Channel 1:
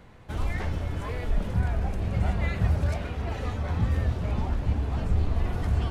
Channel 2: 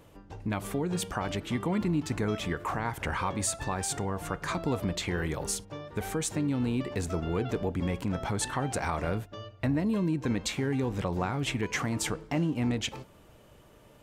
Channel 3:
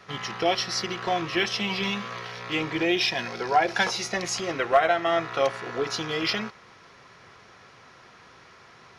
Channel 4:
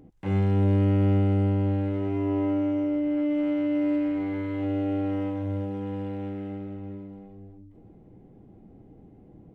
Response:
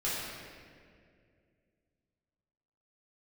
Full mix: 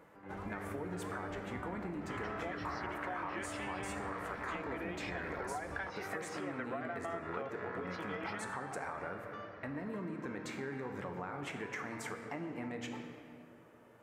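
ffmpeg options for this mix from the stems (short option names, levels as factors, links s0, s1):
-filter_complex "[0:a]volume=0.376[s0];[1:a]alimiter=limit=0.0841:level=0:latency=1:release=243,volume=0.531,asplit=2[s1][s2];[s2]volume=0.355[s3];[2:a]lowpass=3700,acompressor=threshold=0.0398:ratio=6,adelay=2000,volume=0.596[s4];[3:a]volume=0.178[s5];[4:a]atrim=start_sample=2205[s6];[s3][s6]afir=irnorm=-1:irlink=0[s7];[s0][s1][s4][s5][s7]amix=inputs=5:normalize=0,highpass=f=460:p=1,highshelf=f=2400:t=q:w=1.5:g=-9,acompressor=threshold=0.0126:ratio=3"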